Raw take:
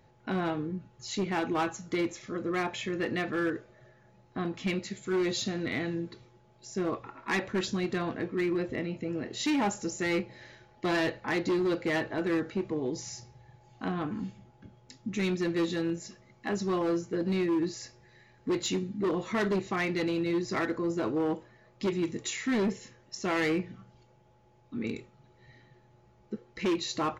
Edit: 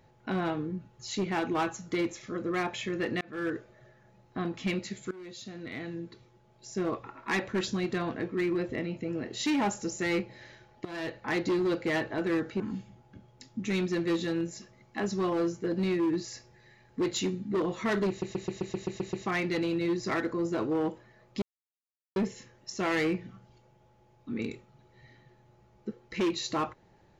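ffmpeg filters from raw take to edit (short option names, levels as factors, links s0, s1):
-filter_complex "[0:a]asplit=15[s0][s1][s2][s3][s4][s5][s6][s7][s8][s9][s10][s11][s12][s13][s14];[s0]atrim=end=3.21,asetpts=PTS-STARTPTS,afade=t=out:st=3.206:d=0.004:c=hsin[s15];[s1]atrim=start=3.21:end=5.11,asetpts=PTS-STARTPTS,afade=t=in:d=0.33,afade=t=out:st=1.896:d=0.004:c=hsin:silence=0.0794328[s16];[s2]atrim=start=5.11:end=10.85,asetpts=PTS-STARTPTS,afade=t=in:d=1.59:silence=0.0794328,afade=t=out:st=5.736:d=0.004:c=hsin:silence=0.105925[s17];[s3]atrim=start=10.85:end=12.602,asetpts=PTS-STARTPTS,afade=t=in:d=0.48:silence=0.105925[s18];[s4]atrim=start=14.088:end=19.712[s19];[s5]atrim=start=19.578:end=19.712[s20];[s6]atrim=start=19.578:end=19.712[s21];[s7]atrim=start=19.578:end=19.712[s22];[s8]atrim=start=19.578:end=19.712[s23];[s9]atrim=start=19.578:end=19.712[s24];[s10]atrim=start=19.578:end=19.712[s25];[s11]atrim=start=19.578:end=19.712[s26];[s12]atrim=start=19.578:end=21.87,asetpts=PTS-STARTPTS,afade=t=out:st=2.288:d=0.004:c=hsin[s27];[s13]atrim=start=21.87:end=22.61,asetpts=PTS-STARTPTS,volume=0[s28];[s14]atrim=start=22.61,asetpts=PTS-STARTPTS,afade=t=in:d=0.004:c=hsin[s29];[s15][s16][s17][s18]concat=n=4:v=0:a=1[s30];[s30][s19]acrossfade=d=0.004:c1=hsin:c2=hsin[s31];[s31][s20]acrossfade=d=0.004:c1=hsin:c2=hsin[s32];[s32][s21]acrossfade=d=0.004:c1=hsin:c2=hsin[s33];[s33][s22]acrossfade=d=0.004:c1=hsin:c2=hsin[s34];[s34][s23]acrossfade=d=0.004:c1=hsin:c2=hsin[s35];[s35][s24]acrossfade=d=0.004:c1=hsin:c2=hsin[s36];[s36][s25]acrossfade=d=0.004:c1=hsin:c2=hsin[s37];[s37][s26]acrossfade=d=0.004:c1=hsin:c2=hsin[s38];[s27][s28][s29]concat=n=3:v=0:a=1[s39];[s38][s39]acrossfade=d=0.004:c1=hsin:c2=hsin"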